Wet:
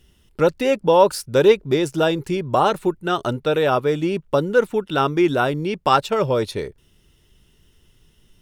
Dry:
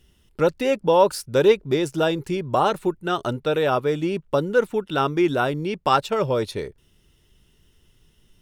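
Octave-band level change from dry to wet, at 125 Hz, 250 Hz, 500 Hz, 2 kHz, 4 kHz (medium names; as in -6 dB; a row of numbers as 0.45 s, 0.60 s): +2.5 dB, +2.5 dB, +2.5 dB, +2.5 dB, +2.5 dB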